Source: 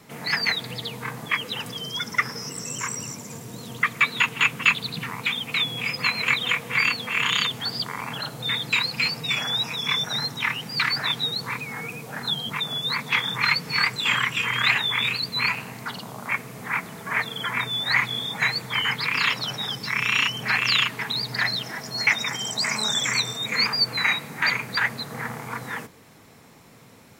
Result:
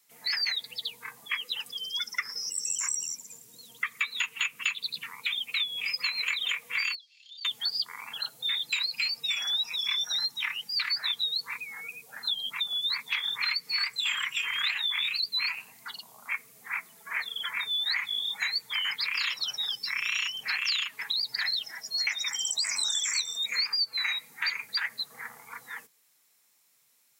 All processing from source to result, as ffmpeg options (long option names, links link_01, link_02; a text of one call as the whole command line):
ffmpeg -i in.wav -filter_complex "[0:a]asettb=1/sr,asplit=3[link_01][link_02][link_03];[link_01]atrim=end=6.954[link_04];[link_02]atrim=start=6.95:end=7.45,asetpts=PTS-STARTPTS,afade=type=in:duration=0.004:curve=qsin,afade=type=out:start_time=0.496:duration=0.004:curve=qsin,asuperpass=centerf=4600:order=4:qfactor=3.2,acompressor=threshold=-38dB:ratio=10:attack=3.2:release=140:knee=1:detection=peak[link_05];[link_03]atrim=start=7.446[link_06];[link_04][link_05]acrossfade=duration=0.004:curve1=hsin:curve2=qsin[link_07];[link_07][link_06]acrossfade=duration=0.004:curve1=qsin:curve2=hsin,afftdn=noise_reduction=14:noise_floor=-34,aderivative,acompressor=threshold=-31dB:ratio=6,volume=5.5dB" out.wav